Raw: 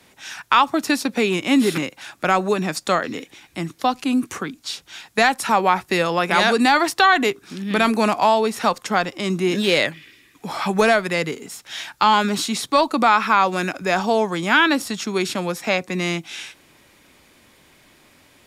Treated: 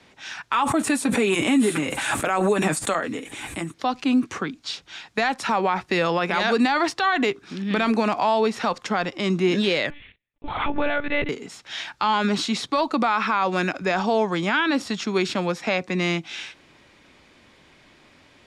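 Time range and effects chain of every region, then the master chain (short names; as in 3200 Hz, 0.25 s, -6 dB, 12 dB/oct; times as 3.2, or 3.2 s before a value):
0.52–3.74 resonant high shelf 6800 Hz +10.5 dB, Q 3 + notch comb 180 Hz + backwards sustainer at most 24 dB/s
9.9–11.29 gate -48 dBFS, range -34 dB + monotone LPC vocoder at 8 kHz 290 Hz
whole clip: LPF 5200 Hz 12 dB/oct; limiter -12 dBFS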